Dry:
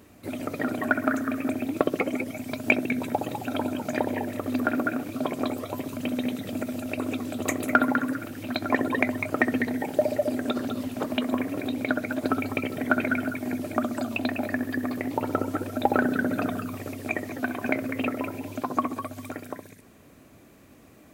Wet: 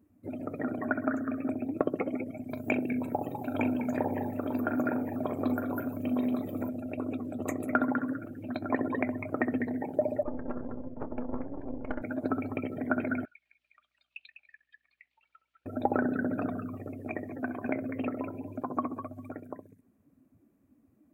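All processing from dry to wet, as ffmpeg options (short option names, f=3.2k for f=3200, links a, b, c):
-filter_complex "[0:a]asettb=1/sr,asplit=3[a][b][c];[a]atrim=end=2.504[d];[b]atrim=start=2.5:end=6.69,asetpts=PTS-STARTPTS,afade=t=in:d=0.004:c=qsin,afade=t=out:st=4.186:d=0.004:c=qsin,highshelf=f=8.9k:g=8,asplit=2[e][f];[f]adelay=40,volume=-9dB[g];[e][g]amix=inputs=2:normalize=0,atrim=end_sample=184779,aecho=1:1:910:0.562,atrim=end_sample=184779[h];[c]atrim=start=6.686[i];[d][h]acrossfade=d=0.004:c1=hsin:c2=qsin[j];[j][i]acrossfade=d=0.004:c1=qsin:c2=hsin,asettb=1/sr,asplit=3[k][l][m];[k]atrim=end=10.234[n];[l]atrim=start=10.23:end=12.02,asetpts=PTS-STARTPTS,afade=t=in:d=0.004:c=qsin,afade=t=out:st=1.786:d=0.004:c=qsin,lowpass=f=1.9k:w=0.5412,lowpass=f=1.9k:w=1.3066,aeval=exprs='max(val(0),0)':c=same,asplit=2[o][p];[p]adelay=29,volume=-13dB[q];[o][q]amix=inputs=2:normalize=0,atrim=end_sample=78939[r];[m]atrim=start=12.016[s];[n][r]acrossfade=d=0.004:c1=hsin:c2=qsin[t];[t][s]acrossfade=d=0.004:c1=qsin:c2=hsin,asettb=1/sr,asplit=3[u][v][w];[u]atrim=end=13.254[x];[v]atrim=start=13.25:end=15.66,asetpts=PTS-STARTPTS,afade=t=in:d=0.004:c=qsin,afade=t=out:st=2.406:d=0.004:c=qsin,asuperpass=centerf=3200:order=4:qfactor=1.6,aeval=exprs='val(0)+0.0002*(sin(2*PI*60*n/s)+sin(2*PI*2*60*n/s)/2+sin(2*PI*3*60*n/s)/3+sin(2*PI*4*60*n/s)/4+sin(2*PI*5*60*n/s)/5)':c=same[y];[w]atrim=start=15.656[z];[x][y]acrossfade=d=0.004:c1=hsin:c2=qsin[aa];[aa][z]acrossfade=d=0.004:c1=qsin:c2=hsin,afftdn=nr=16:nf=-40,equalizer=f=4.1k:t=o:w=2.1:g=-13,volume=-4dB"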